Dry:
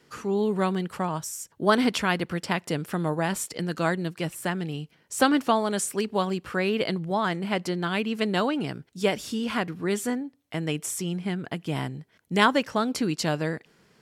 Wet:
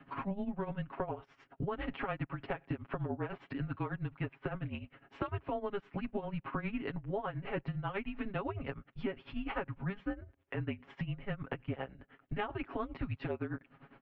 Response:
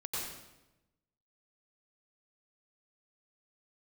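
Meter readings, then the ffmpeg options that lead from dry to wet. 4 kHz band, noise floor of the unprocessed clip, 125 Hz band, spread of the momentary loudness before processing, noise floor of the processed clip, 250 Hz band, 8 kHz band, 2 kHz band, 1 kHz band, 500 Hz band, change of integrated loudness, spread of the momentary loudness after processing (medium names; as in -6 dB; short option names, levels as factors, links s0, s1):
-21.0 dB, -64 dBFS, -7.5 dB, 9 LU, -70 dBFS, -13.0 dB, under -40 dB, -14.0 dB, -13.5 dB, -13.0 dB, -13.0 dB, 4 LU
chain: -af "highpass=f=310:t=q:w=0.5412,highpass=f=310:t=q:w=1.307,lowpass=f=3200:t=q:w=0.5176,lowpass=f=3200:t=q:w=0.7071,lowpass=f=3200:t=q:w=1.932,afreqshift=-200,tremolo=f=9.9:d=0.83,highshelf=f=2200:g=-11,aecho=1:1:7.3:0.91,alimiter=limit=0.106:level=0:latency=1:release=144,acompressor=threshold=0.00708:ratio=5,volume=2.37"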